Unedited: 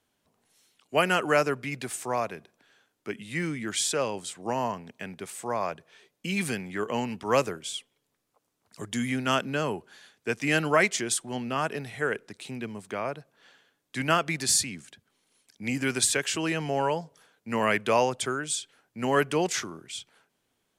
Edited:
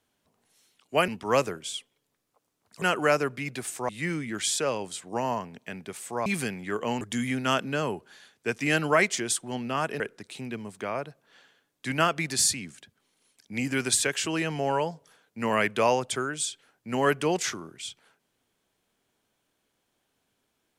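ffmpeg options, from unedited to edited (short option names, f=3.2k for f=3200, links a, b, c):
-filter_complex "[0:a]asplit=7[a][b][c][d][e][f][g];[a]atrim=end=1.082[h];[b]atrim=start=7.078:end=8.822[i];[c]atrim=start=1.078:end=2.152[j];[d]atrim=start=3.218:end=5.592[k];[e]atrim=start=6.328:end=7.082[l];[f]atrim=start=8.818:end=11.812[m];[g]atrim=start=12.098[n];[h][i]acrossfade=d=0.004:c1=hsin:c2=hsin[o];[o][j]acrossfade=d=0.004:c1=hsin:c2=hsin[p];[p][k]acrossfade=d=0.004:c1=hsin:c2=hsin[q];[q][l]acrossfade=d=0.004:c1=hsin:c2=hsin[r];[r][m]acrossfade=d=0.004:c1=hsin:c2=hsin[s];[s][n]acrossfade=d=0.004:c1=hsin:c2=hsin"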